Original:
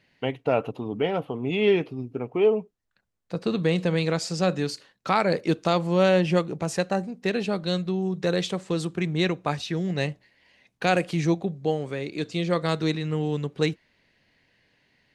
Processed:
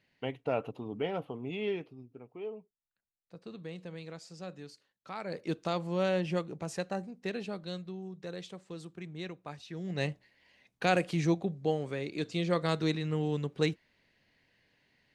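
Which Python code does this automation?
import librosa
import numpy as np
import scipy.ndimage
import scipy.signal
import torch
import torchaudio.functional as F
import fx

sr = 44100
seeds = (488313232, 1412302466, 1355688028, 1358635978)

y = fx.gain(x, sr, db=fx.line((1.27, -8.5), (2.28, -20.0), (5.1, -20.0), (5.52, -10.0), (7.24, -10.0), (8.23, -17.0), (9.63, -17.0), (10.05, -5.0)))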